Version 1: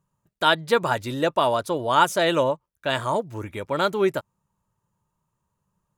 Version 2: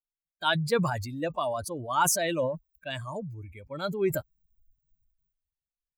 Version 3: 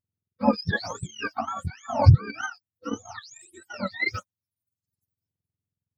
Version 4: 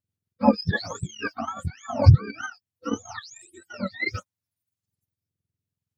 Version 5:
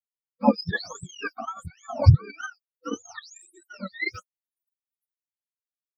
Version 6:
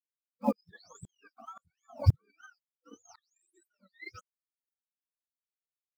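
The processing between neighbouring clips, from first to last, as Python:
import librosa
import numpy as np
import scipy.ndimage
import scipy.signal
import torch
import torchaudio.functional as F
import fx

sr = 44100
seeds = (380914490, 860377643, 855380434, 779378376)

y1 = fx.bin_expand(x, sr, power=2.0)
y1 = fx.sustainer(y1, sr, db_per_s=46.0)
y1 = y1 * librosa.db_to_amplitude(-4.5)
y2 = fx.octave_mirror(y1, sr, pivot_hz=890.0)
y2 = fx.transient(y2, sr, attack_db=6, sustain_db=-8)
y3 = fx.rotary_switch(y2, sr, hz=6.0, then_hz=0.65, switch_at_s=1.51)
y3 = y3 * librosa.db_to_amplitude(3.5)
y4 = fx.bin_expand(y3, sr, power=1.5)
y5 = fx.block_float(y4, sr, bits=7)
y5 = fx.tremolo_decay(y5, sr, direction='swelling', hz=1.9, depth_db=34)
y5 = y5 * librosa.db_to_amplitude(-7.0)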